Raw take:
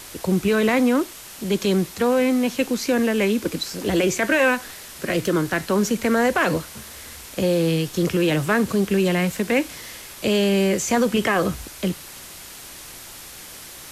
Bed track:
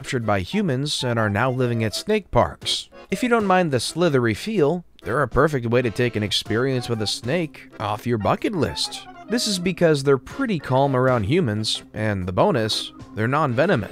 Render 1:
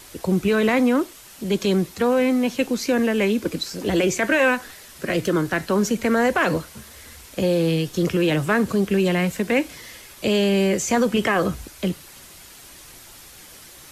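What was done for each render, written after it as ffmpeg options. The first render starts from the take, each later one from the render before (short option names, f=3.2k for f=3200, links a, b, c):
-af "afftdn=nr=6:nf=-40"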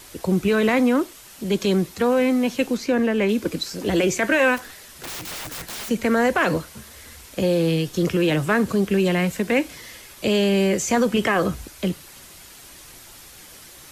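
-filter_complex "[0:a]asettb=1/sr,asplit=3[a][b][c];[a]atrim=end=2.774[d];[b]atrim=start=2.77:end=3.29,asetpts=PTS-STARTPTS,afade=t=in:d=0.004:c=qsin,afade=t=out:st=0.516:d=0.004:c=qsin,highshelf=f=4.5k:g=-9.5[e];[c]atrim=start=3.286[f];[d][e]acrossfade=d=0.004:c1=hsin:c2=qsin[g];[g][f]acrossfade=d=0.004:c1=qsin:c2=hsin,asplit=3[h][i][j];[h]afade=t=out:st=4.56:d=0.02[k];[i]aeval=exprs='(mod(25.1*val(0)+1,2)-1)/25.1':c=same,afade=t=in:st=4.56:d=0.02,afade=t=out:st=5.88:d=0.02[l];[j]afade=t=in:st=5.88:d=0.02[m];[k][l][m]amix=inputs=3:normalize=0"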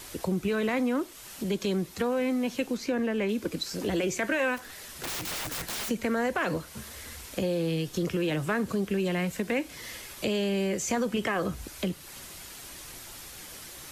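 -af "acompressor=threshold=-32dB:ratio=2"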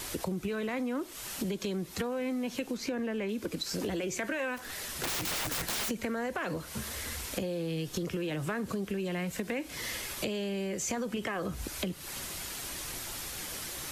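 -filter_complex "[0:a]asplit=2[a][b];[b]alimiter=level_in=1.5dB:limit=-24dB:level=0:latency=1,volume=-1.5dB,volume=-3dB[c];[a][c]amix=inputs=2:normalize=0,acompressor=threshold=-31dB:ratio=6"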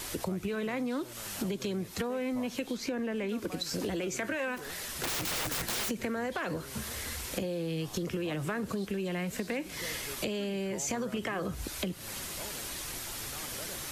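-filter_complex "[1:a]volume=-29.5dB[a];[0:a][a]amix=inputs=2:normalize=0"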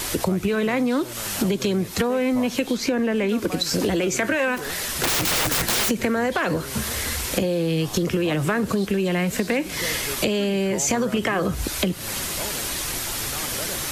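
-af "volume=11.5dB"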